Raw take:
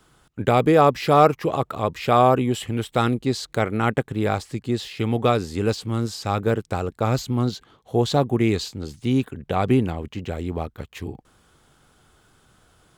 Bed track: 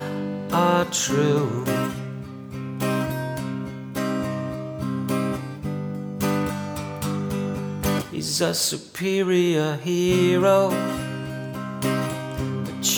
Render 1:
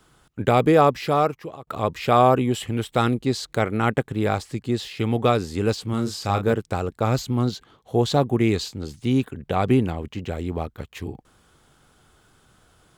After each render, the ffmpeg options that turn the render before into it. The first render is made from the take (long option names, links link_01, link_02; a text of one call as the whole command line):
ffmpeg -i in.wav -filter_complex "[0:a]asettb=1/sr,asplit=3[link_01][link_02][link_03];[link_01]atrim=end=5.904[link_04];[link_02]atrim=start=5.9:end=6.53,asetpts=PTS-STARTPTS,afade=type=in:duration=0.004:curve=qsin,afade=type=out:start_time=0.626:duration=0.004:curve=qsin,asplit=2[link_05][link_06];[link_06]adelay=31,volume=-7dB[link_07];[link_05][link_07]amix=inputs=2:normalize=0,atrim=end_sample=27783[link_08];[link_03]atrim=start=6.526[link_09];[link_04][link_08]acrossfade=duration=0.004:curve1=hsin:curve2=qsin[link_10];[link_10][link_09]acrossfade=duration=0.004:curve1=qsin:curve2=hsin,asplit=2[link_11][link_12];[link_11]atrim=end=1.67,asetpts=PTS-STARTPTS,afade=type=out:start_time=0.75:duration=0.92:silence=0.0668344[link_13];[link_12]atrim=start=1.67,asetpts=PTS-STARTPTS,afade=type=in:duration=0.004:curve=hsin:silence=0.0668344[link_14];[link_13][link_14]concat=n=2:v=0:a=1" out.wav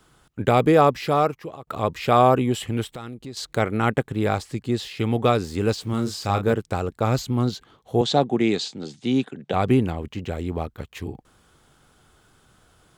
ffmpeg -i in.wav -filter_complex "[0:a]asettb=1/sr,asplit=3[link_01][link_02][link_03];[link_01]atrim=end=2.914[link_04];[link_02]atrim=start=2.91:end=3.37,asetpts=PTS-STARTPTS,afade=type=in:duration=0.004:curve=qsin,afade=type=out:start_time=0.456:duration=0.004:curve=qsin,acompressor=threshold=-37dB:ratio=3:attack=3.2:release=140:knee=1:detection=peak[link_05];[link_03]atrim=start=3.366[link_06];[link_04][link_05]acrossfade=duration=0.004:curve1=hsin:curve2=qsin[link_07];[link_07][link_06]acrossfade=duration=0.004:curve1=qsin:curve2=hsin,asettb=1/sr,asplit=3[link_08][link_09][link_10];[link_08]atrim=end=5.444[link_11];[link_09]atrim=start=5.44:end=6.26,asetpts=PTS-STARTPTS,afade=type=in:duration=0.004:curve=qsin,afade=type=out:start_time=0.816:duration=0.004:curve=qsin,aeval=exprs='val(0)*gte(abs(val(0)),0.00473)':channel_layout=same[link_12];[link_10]atrim=start=6.256[link_13];[link_11][link_12]acrossfade=duration=0.004:curve1=hsin:curve2=qsin[link_14];[link_14][link_13]acrossfade=duration=0.004:curve1=qsin:curve2=hsin,asettb=1/sr,asplit=3[link_15][link_16][link_17];[link_15]atrim=end=8.014[link_18];[link_16]atrim=start=8.01:end=9.54,asetpts=PTS-STARTPTS,afade=type=in:duration=0.004:curve=qsin,afade=type=out:start_time=1.526:duration=0.004:curve=qsin,highpass=frequency=150:width=0.5412,highpass=frequency=150:width=1.3066,equalizer=frequency=760:width_type=q:width=4:gain=4,equalizer=frequency=1100:width_type=q:width=4:gain=-4,equalizer=frequency=3600:width_type=q:width=4:gain=5,lowpass=frequency=8100:width=0.5412,lowpass=frequency=8100:width=1.3066[link_19];[link_17]atrim=start=9.536[link_20];[link_18][link_19]acrossfade=duration=0.004:curve1=hsin:curve2=qsin[link_21];[link_21][link_20]acrossfade=duration=0.004:curve1=qsin:curve2=hsin" out.wav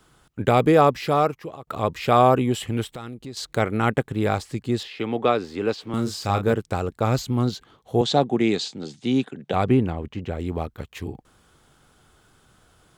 ffmpeg -i in.wav -filter_complex "[0:a]asettb=1/sr,asplit=3[link_01][link_02][link_03];[link_01]atrim=end=4.834[link_04];[link_02]atrim=start=4.83:end=5.94,asetpts=PTS-STARTPTS,afade=type=in:duration=0.004:curve=qsin,afade=type=out:start_time=1.106:duration=0.004:curve=qsin,acrossover=split=220 4600:gain=0.2 1 0.178[link_05][link_06][link_07];[link_05][link_06][link_07]amix=inputs=3:normalize=0[link_08];[link_03]atrim=start=5.936[link_09];[link_04][link_08]acrossfade=duration=0.004:curve1=hsin:curve2=qsin[link_10];[link_10][link_09]acrossfade=duration=0.004:curve1=qsin:curve2=hsin,asettb=1/sr,asplit=3[link_11][link_12][link_13];[link_11]atrim=end=9.644[link_14];[link_12]atrim=start=9.64:end=10.4,asetpts=PTS-STARTPTS,afade=type=in:duration=0.004:curve=qsin,afade=type=out:start_time=0.756:duration=0.004:curve=qsin,highshelf=frequency=4300:gain=-11[link_15];[link_13]atrim=start=10.396[link_16];[link_14][link_15]acrossfade=duration=0.004:curve1=hsin:curve2=qsin[link_17];[link_17][link_16]acrossfade=duration=0.004:curve1=qsin:curve2=hsin" out.wav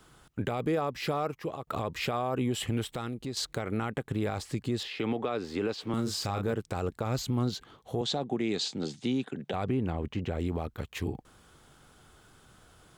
ffmpeg -i in.wav -af "acompressor=threshold=-23dB:ratio=6,alimiter=limit=-21dB:level=0:latency=1:release=50" out.wav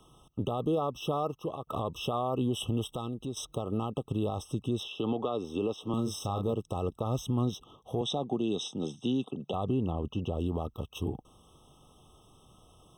ffmpeg -i in.wav -af "afftfilt=real='re*eq(mod(floor(b*sr/1024/1300),2),0)':imag='im*eq(mod(floor(b*sr/1024/1300),2),0)':win_size=1024:overlap=0.75" out.wav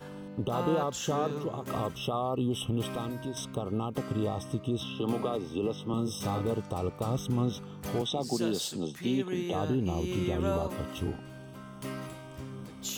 ffmpeg -i in.wav -i bed.wav -filter_complex "[1:a]volume=-15dB[link_01];[0:a][link_01]amix=inputs=2:normalize=0" out.wav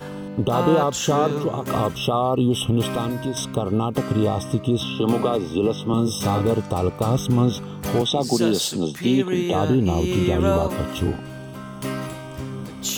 ffmpeg -i in.wav -af "volume=10.5dB" out.wav